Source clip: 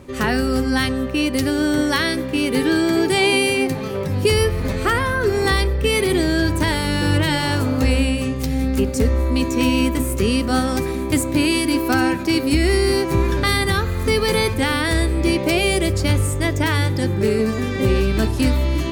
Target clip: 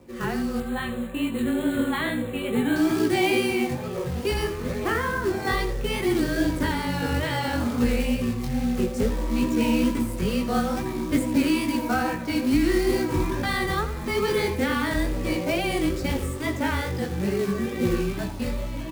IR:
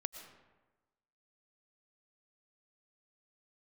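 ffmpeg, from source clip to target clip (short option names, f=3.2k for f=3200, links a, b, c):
-filter_complex "[0:a]highpass=f=150:p=1,highshelf=f=2.7k:g=-11,dynaudnorm=f=680:g=5:m=4dB,flanger=delay=0.3:depth=1.4:regen=-51:speed=0.62:shape=triangular,acrusher=bits=4:mode=log:mix=0:aa=0.000001,afreqshift=-20,flanger=delay=16.5:depth=6:speed=2.3,asettb=1/sr,asplit=3[a][b][c];[a]atrim=end=0.604[d];[b]atrim=start=0.6:end=2.76,asetpts=PTS-STARTPTS,afade=t=in:d=0.004:c=qsin,afade=t=out:st=2.156:d=0.004:c=qsin,asuperstop=centerf=5400:order=12:qfactor=2[e];[c]atrim=start=2.756[f];[d][e]acrossfade=d=0.004:c1=hsin:c2=qsin[g];[g][f]acrossfade=d=0.004:c1=qsin:c2=hsin,aecho=1:1:82:0.224"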